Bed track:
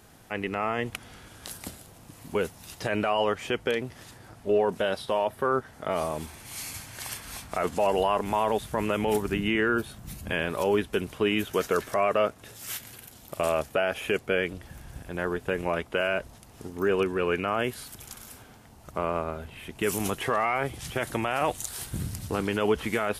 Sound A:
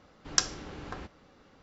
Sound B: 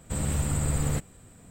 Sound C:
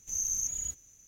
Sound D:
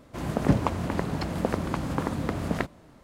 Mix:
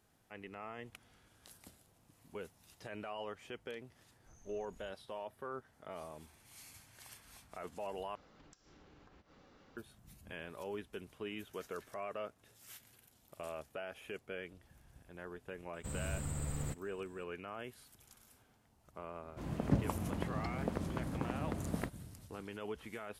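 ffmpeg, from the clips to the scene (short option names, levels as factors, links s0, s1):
-filter_complex "[0:a]volume=0.119[s0];[3:a]lowpass=1500[s1];[1:a]acompressor=threshold=0.00224:ratio=20:attack=3.4:release=100:knee=1:detection=rms[s2];[4:a]lowshelf=f=470:g=5.5[s3];[s0]asplit=2[s4][s5];[s4]atrim=end=8.154[s6];[s2]atrim=end=1.62,asetpts=PTS-STARTPTS,volume=0.631[s7];[s5]atrim=start=9.766[s8];[s1]atrim=end=1.07,asetpts=PTS-STARTPTS,volume=0.266,afade=t=in:d=0.004:c=hsin,afade=t=out:st=1.066:d=0.004:c=hsin,adelay=4180[s9];[2:a]atrim=end=1.5,asetpts=PTS-STARTPTS,volume=0.237,afade=t=in:d=0.004:c=hsin,afade=t=out:st=1.496:d=0.004:c=hsin,adelay=15740[s10];[s3]atrim=end=3.03,asetpts=PTS-STARTPTS,volume=0.2,afade=t=in:d=0.004:c=hsin,afade=t=out:st=3.026:d=0.004:c=hsin,adelay=19230[s11];[s6][s7]acrossfade=d=0.004:c1=hsin:c2=hsin[s12];[s12][s8]acrossfade=d=0.004:c1=hsin:c2=hsin[s13];[s13][s9][s10][s11]amix=inputs=4:normalize=0"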